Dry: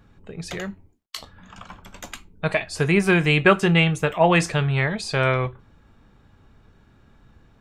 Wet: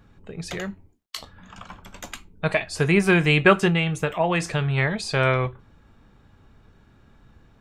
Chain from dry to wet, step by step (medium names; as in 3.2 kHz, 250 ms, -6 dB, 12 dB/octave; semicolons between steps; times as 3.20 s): 3.68–4.78 s: compression 3:1, threshold -20 dBFS, peak gain reduction 6.5 dB